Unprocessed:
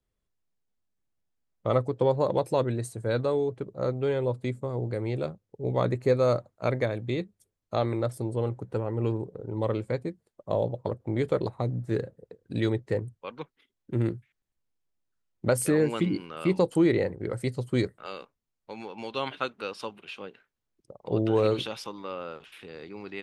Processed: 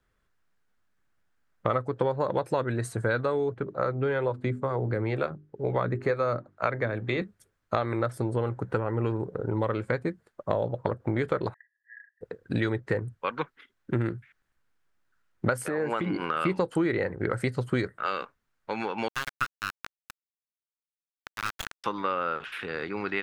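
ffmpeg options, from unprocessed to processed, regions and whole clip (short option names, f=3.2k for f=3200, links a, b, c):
-filter_complex "[0:a]asettb=1/sr,asplit=3[a][b][c];[a]atrim=end=3.544[d];[b]atrim=start=3.54:end=7.22,asetpts=PTS-STARTPTS,afade=t=in:d=0.004:c=qsin,afade=t=out:st=3.676:d=0.004:c=qsin,highshelf=f=7.5k:g=-11.5,bandreject=f=50:t=h:w=6,bandreject=f=100:t=h:w=6,bandreject=f=150:t=h:w=6,bandreject=f=200:t=h:w=6,bandreject=f=250:t=h:w=6,bandreject=f=300:t=h:w=6,bandreject=f=350:t=h:w=6,bandreject=f=400:t=h:w=6,acrossover=split=430[e][f];[e]aeval=exprs='val(0)*(1-0.5/2+0.5/2*cos(2*PI*2.1*n/s))':c=same[g];[f]aeval=exprs='val(0)*(1-0.5/2-0.5/2*cos(2*PI*2.1*n/s))':c=same[h];[g][h]amix=inputs=2:normalize=0[i];[c]atrim=start=7.216[j];[d][i]acrossfade=d=0.004:c1=hsin:c2=qsin[k];[k][j]acrossfade=d=0.004:c1=qsin:c2=hsin,asettb=1/sr,asplit=3[l][m][n];[l]atrim=end=11.544[o];[m]atrim=start=11.54:end=12.21,asetpts=PTS-STARTPTS,afade=t=in:d=0.004:c=qsin,afade=t=out:st=0.666:d=0.004:c=qsin,acompressor=threshold=-44dB:ratio=3:attack=3.2:release=140:knee=1:detection=peak,asuperpass=centerf=1800:order=12:qfactor=5.5[p];[n]atrim=start=12.206[q];[o][p]acrossfade=d=0.004:c1=hsin:c2=qsin[r];[r][q]acrossfade=d=0.004:c1=qsin:c2=hsin,asettb=1/sr,asplit=3[s][t][u];[s]atrim=end=15.624[v];[t]atrim=start=15.62:end=16.31,asetpts=PTS-STARTPTS,afade=t=in:d=0.004:c=qsin,afade=t=out:st=0.686:d=0.004:c=qsin,equalizer=f=710:w=0.88:g=11.5,acompressor=threshold=-32dB:ratio=4:attack=3.2:release=140:knee=1:detection=peak[w];[u]atrim=start=16.306[x];[v][w]acrossfade=d=0.004:c1=hsin:c2=qsin[y];[y][x]acrossfade=d=0.004:c1=qsin:c2=hsin,asettb=1/sr,asplit=3[z][aa][ab];[z]atrim=end=19.084[ac];[aa]atrim=start=19.08:end=21.84,asetpts=PTS-STARTPTS,afade=t=in:d=0.004:c=qsin,afade=t=out:st=2.756:d=0.004:c=qsin,highpass=f=1.2k:w=0.5412,highpass=f=1.2k:w=1.3066,aemphasis=mode=reproduction:type=75kf,acrusher=bits=3:dc=4:mix=0:aa=0.000001[ad];[ab]atrim=start=21.836[ae];[ac][ad]acrossfade=d=0.004:c1=hsin:c2=qsin[af];[af][ae]acrossfade=d=0.004:c1=qsin:c2=hsin,equalizer=f=1.5k:w=1.4:g=12.5,acompressor=threshold=-31dB:ratio=5,highshelf=f=6.1k:g=-5.5,volume=7dB"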